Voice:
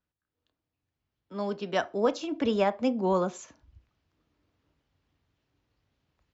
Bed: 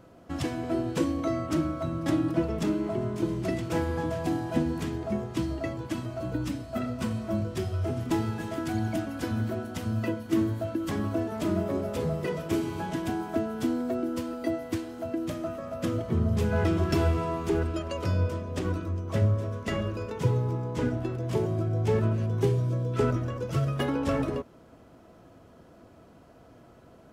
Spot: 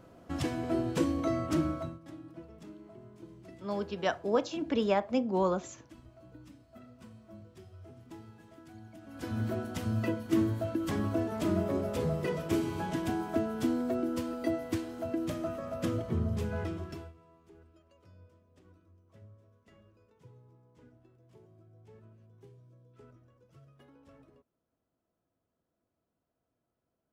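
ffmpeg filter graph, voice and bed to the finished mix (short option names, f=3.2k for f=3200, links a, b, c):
-filter_complex "[0:a]adelay=2300,volume=-2.5dB[a];[1:a]volume=17.5dB,afade=t=out:st=1.72:d=0.27:silence=0.105925,afade=t=in:st=9.01:d=0.5:silence=0.105925,afade=t=out:st=15.75:d=1.38:silence=0.0354813[b];[a][b]amix=inputs=2:normalize=0"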